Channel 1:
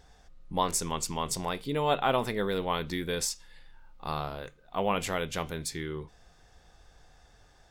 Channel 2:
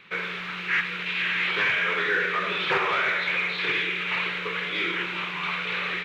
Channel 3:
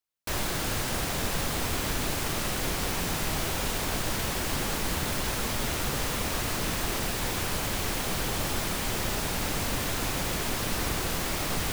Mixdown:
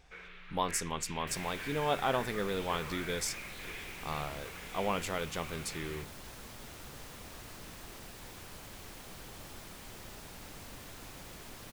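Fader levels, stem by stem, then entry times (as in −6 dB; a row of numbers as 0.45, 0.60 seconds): −4.5, −20.0, −18.5 decibels; 0.00, 0.00, 1.00 seconds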